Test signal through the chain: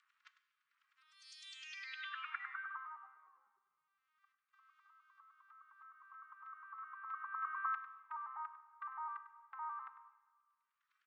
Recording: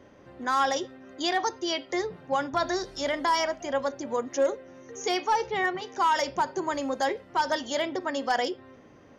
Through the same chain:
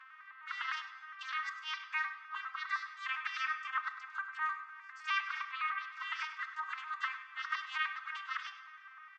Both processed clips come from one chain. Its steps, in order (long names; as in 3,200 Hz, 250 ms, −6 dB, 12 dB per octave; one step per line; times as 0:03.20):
vocoder with an arpeggio as carrier minor triad, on C4, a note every 102 ms
gate on every frequency bin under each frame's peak −20 dB weak
low-pass filter 1,600 Hz 12 dB per octave
in parallel at −1.5 dB: upward compression, threshold −50 dBFS
on the sum: elliptic high-pass filter 1,200 Hz, stop band 50 dB
on a send: single-tap delay 100 ms −13.5 dB
on the sum: dense smooth reverb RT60 1.5 s, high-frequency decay 0.9×, DRR 11.5 dB
level +10 dB